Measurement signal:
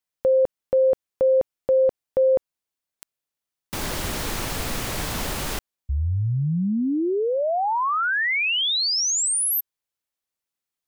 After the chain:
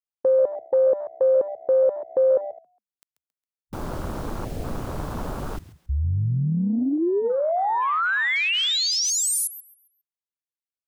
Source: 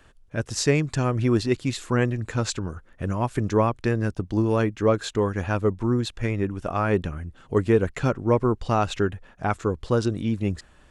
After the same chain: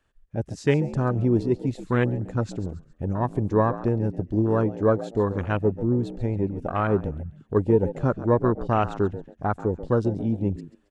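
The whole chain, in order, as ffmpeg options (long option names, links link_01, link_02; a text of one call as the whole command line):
ffmpeg -i in.wav -filter_complex "[0:a]asplit=4[link_01][link_02][link_03][link_04];[link_02]adelay=136,afreqshift=66,volume=-13.5dB[link_05];[link_03]adelay=272,afreqshift=132,volume=-22.6dB[link_06];[link_04]adelay=408,afreqshift=198,volume=-31.7dB[link_07];[link_01][link_05][link_06][link_07]amix=inputs=4:normalize=0,afwtdn=0.0398" out.wav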